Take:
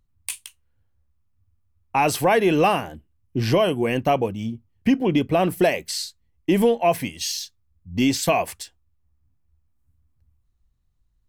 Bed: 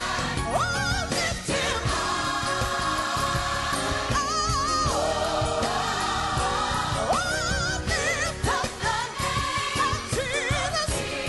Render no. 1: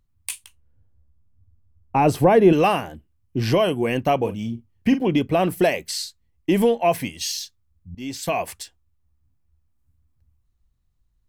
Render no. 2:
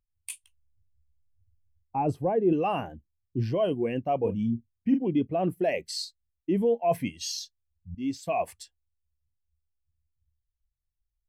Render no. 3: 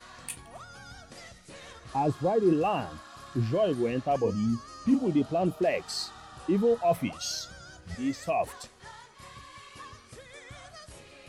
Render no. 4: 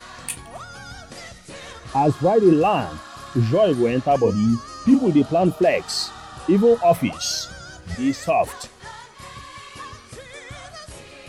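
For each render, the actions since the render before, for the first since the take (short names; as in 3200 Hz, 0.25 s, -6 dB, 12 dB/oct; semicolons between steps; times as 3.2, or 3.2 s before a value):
0.44–2.53 tilt shelf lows +8 dB, about 920 Hz; 4.17–5.08 doubler 43 ms -10.5 dB; 7.95–8.57 fade in, from -21.5 dB
reverse; compressor 6:1, threshold -25 dBFS, peak gain reduction 15 dB; reverse; spectral expander 1.5:1
add bed -21.5 dB
gain +9 dB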